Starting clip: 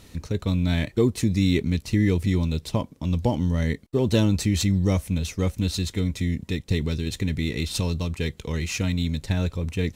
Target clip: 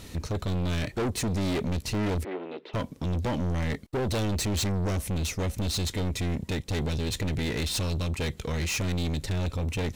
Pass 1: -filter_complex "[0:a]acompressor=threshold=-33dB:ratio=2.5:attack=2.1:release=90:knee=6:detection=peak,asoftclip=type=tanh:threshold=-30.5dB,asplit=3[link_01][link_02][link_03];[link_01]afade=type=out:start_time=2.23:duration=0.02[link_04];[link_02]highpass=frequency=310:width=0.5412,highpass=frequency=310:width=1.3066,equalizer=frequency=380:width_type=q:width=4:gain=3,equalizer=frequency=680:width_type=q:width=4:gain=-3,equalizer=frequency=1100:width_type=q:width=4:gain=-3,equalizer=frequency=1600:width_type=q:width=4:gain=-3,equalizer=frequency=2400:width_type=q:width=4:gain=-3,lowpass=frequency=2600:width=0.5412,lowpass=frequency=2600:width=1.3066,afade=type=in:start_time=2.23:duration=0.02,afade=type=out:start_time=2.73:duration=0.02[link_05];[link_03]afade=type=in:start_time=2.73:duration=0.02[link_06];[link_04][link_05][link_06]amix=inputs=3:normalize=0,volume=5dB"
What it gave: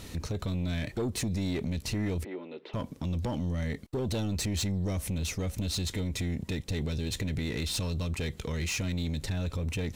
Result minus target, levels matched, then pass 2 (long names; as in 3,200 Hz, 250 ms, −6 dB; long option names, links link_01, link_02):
downward compressor: peak gain reduction +13 dB
-filter_complex "[0:a]asoftclip=type=tanh:threshold=-30.5dB,asplit=3[link_01][link_02][link_03];[link_01]afade=type=out:start_time=2.23:duration=0.02[link_04];[link_02]highpass=frequency=310:width=0.5412,highpass=frequency=310:width=1.3066,equalizer=frequency=380:width_type=q:width=4:gain=3,equalizer=frequency=680:width_type=q:width=4:gain=-3,equalizer=frequency=1100:width_type=q:width=4:gain=-3,equalizer=frequency=1600:width_type=q:width=4:gain=-3,equalizer=frequency=2400:width_type=q:width=4:gain=-3,lowpass=frequency=2600:width=0.5412,lowpass=frequency=2600:width=1.3066,afade=type=in:start_time=2.23:duration=0.02,afade=type=out:start_time=2.73:duration=0.02[link_05];[link_03]afade=type=in:start_time=2.73:duration=0.02[link_06];[link_04][link_05][link_06]amix=inputs=3:normalize=0,volume=5dB"